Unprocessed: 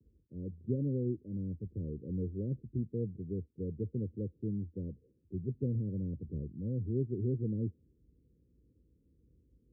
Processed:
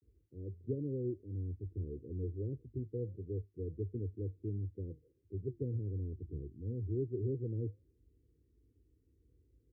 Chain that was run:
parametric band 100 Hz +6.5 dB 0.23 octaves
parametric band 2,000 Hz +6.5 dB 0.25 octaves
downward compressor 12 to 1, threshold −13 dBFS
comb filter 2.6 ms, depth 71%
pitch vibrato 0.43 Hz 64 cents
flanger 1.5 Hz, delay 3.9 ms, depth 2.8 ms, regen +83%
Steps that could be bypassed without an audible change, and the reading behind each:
parametric band 2,000 Hz: nothing at its input above 540 Hz
downward compressor, threshold −13 dBFS: peak of its input −20.0 dBFS

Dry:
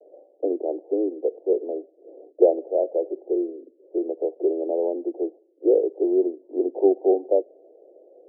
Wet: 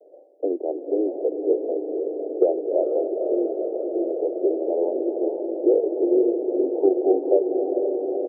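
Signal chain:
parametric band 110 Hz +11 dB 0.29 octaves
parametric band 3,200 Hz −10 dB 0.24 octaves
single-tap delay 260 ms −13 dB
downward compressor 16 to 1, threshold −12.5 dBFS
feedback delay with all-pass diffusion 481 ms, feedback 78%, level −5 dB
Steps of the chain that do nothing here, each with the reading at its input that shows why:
parametric band 110 Hz: nothing at its input below 240 Hz
parametric band 3,200 Hz: nothing at its input above 810 Hz

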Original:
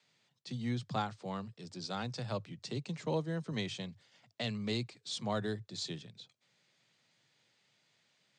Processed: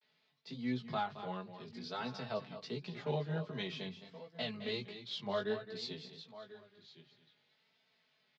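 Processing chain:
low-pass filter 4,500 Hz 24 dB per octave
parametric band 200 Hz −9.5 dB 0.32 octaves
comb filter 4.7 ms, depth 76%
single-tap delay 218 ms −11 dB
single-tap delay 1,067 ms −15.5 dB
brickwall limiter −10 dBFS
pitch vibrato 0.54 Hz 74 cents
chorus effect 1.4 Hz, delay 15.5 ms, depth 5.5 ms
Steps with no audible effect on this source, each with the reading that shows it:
brickwall limiter −10 dBFS: peak of its input −21.5 dBFS

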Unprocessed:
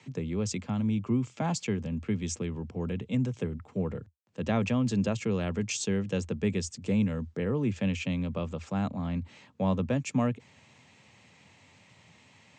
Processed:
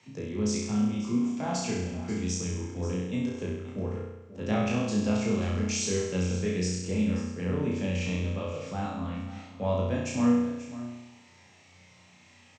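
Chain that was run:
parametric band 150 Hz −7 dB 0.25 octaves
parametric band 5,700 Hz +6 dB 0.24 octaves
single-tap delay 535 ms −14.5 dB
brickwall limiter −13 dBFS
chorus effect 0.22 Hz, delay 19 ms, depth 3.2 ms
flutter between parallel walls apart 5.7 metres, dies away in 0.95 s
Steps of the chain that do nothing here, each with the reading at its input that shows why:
brickwall limiter −13 dBFS: peak of its input −15.5 dBFS

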